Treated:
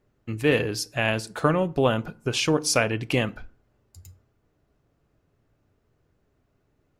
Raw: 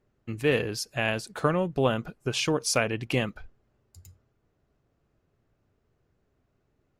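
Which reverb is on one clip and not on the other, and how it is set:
feedback delay network reverb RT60 0.44 s, low-frequency decay 1.25×, high-frequency decay 0.65×, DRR 15.5 dB
level +3 dB

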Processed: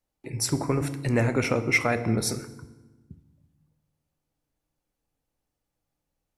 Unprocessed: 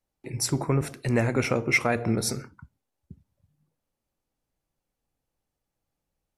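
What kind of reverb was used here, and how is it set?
feedback delay network reverb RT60 1.2 s, low-frequency decay 1.5×, high-frequency decay 0.75×, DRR 11.5 dB

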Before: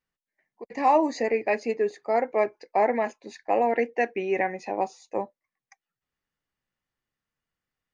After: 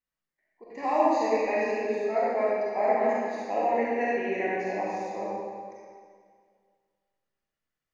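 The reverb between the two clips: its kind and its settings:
comb and all-pass reverb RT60 2 s, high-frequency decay 0.9×, pre-delay 5 ms, DRR −7.5 dB
level −9.5 dB

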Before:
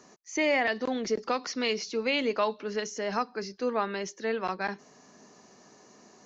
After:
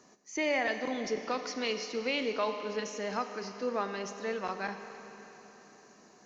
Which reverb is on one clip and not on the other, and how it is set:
four-comb reverb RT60 4 s, combs from 30 ms, DRR 7.5 dB
level −4.5 dB

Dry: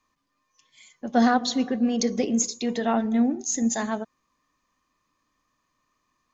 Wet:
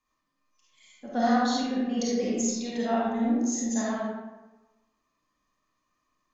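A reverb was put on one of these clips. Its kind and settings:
comb and all-pass reverb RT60 1.1 s, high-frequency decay 0.6×, pre-delay 10 ms, DRR −6.5 dB
level −10 dB

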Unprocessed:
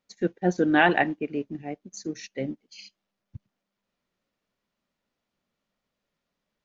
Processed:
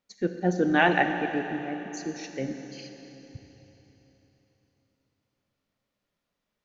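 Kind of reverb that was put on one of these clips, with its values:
four-comb reverb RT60 3.7 s, combs from 30 ms, DRR 6 dB
level −1.5 dB

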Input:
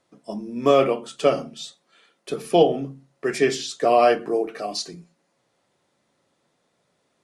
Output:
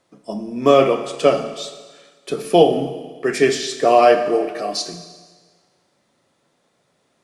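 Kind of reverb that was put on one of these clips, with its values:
four-comb reverb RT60 1.5 s, combs from 28 ms, DRR 8.5 dB
level +4 dB

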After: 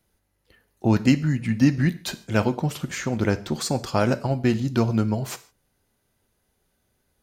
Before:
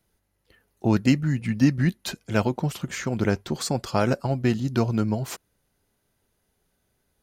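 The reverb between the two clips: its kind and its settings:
reverb whose tail is shaped and stops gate 180 ms falling, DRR 11.5 dB
level +1 dB

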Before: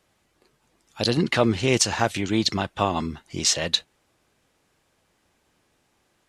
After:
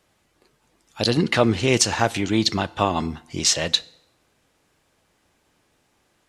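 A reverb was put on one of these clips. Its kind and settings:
feedback delay network reverb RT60 0.86 s, low-frequency decay 0.9×, high-frequency decay 0.75×, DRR 18.5 dB
level +2 dB

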